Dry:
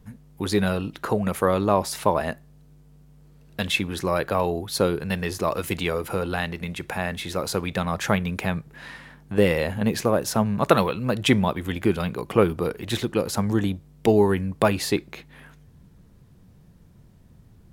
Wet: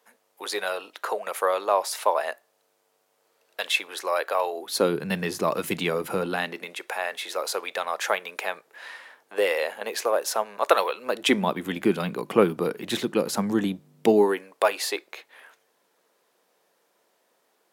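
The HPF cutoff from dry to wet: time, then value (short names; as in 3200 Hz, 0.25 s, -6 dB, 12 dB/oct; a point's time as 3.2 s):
HPF 24 dB/oct
4.52 s 500 Hz
4.97 s 150 Hz
6.23 s 150 Hz
6.84 s 460 Hz
10.97 s 460 Hz
11.55 s 170 Hz
14.08 s 170 Hz
14.48 s 470 Hz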